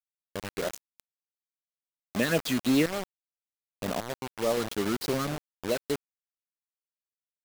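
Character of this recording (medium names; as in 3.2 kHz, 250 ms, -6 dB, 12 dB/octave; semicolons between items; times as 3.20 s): phasing stages 6, 3.4 Hz, lowest notch 620–3000 Hz; random-step tremolo, depth 85%; a quantiser's noise floor 6-bit, dither none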